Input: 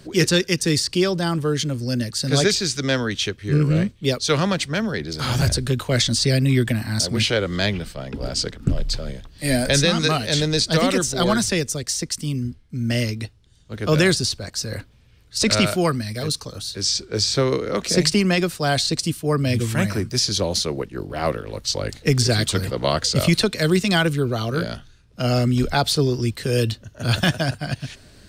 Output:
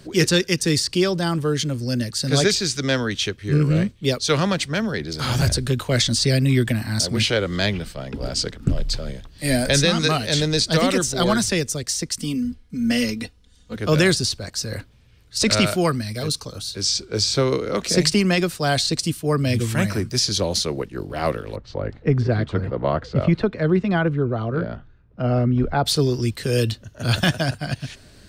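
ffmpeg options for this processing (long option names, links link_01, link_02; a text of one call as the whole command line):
ffmpeg -i in.wav -filter_complex "[0:a]asettb=1/sr,asplit=3[link_01][link_02][link_03];[link_01]atrim=end=12.204[link_04];[link_02]atrim=start=12.2:end=13.76,asetpts=PTS-STARTPTS,afade=type=in:duration=0.004:curve=qsin,afade=type=out:start_time=1.556:duration=0.004:curve=qsin,aecho=1:1:4.1:0.88,atrim=end_sample=68796[link_05];[link_03]atrim=start=13.756[link_06];[link_04][link_05]acrossfade=duration=0.004:curve1=hsin:curve2=qsin[link_07];[link_07][link_06]acrossfade=duration=0.004:curve1=qsin:curve2=hsin,asettb=1/sr,asplit=3[link_08][link_09][link_10];[link_08]atrim=end=16.064[link_11];[link_09]atrim=start=16.06:end=17.77,asetpts=PTS-STARTPTS,afade=type=in:duration=0.004:curve=qsin,afade=type=out:start_time=1.706:duration=0.004:curve=qsin,bandreject=frequency=1800:width=12[link_12];[link_10]atrim=start=17.766[link_13];[link_11][link_12]acrossfade=duration=0.004:curve1=hsin:curve2=qsin[link_14];[link_14][link_13]acrossfade=duration=0.004:curve1=qsin:curve2=hsin,asplit=3[link_15][link_16][link_17];[link_15]afade=type=out:start_time=21.55:duration=0.02[link_18];[link_16]lowpass=1400,afade=type=in:start_time=21.55:duration=0.02,afade=type=out:start_time=25.85:duration=0.02[link_19];[link_17]afade=type=in:start_time=25.85:duration=0.02[link_20];[link_18][link_19][link_20]amix=inputs=3:normalize=0" out.wav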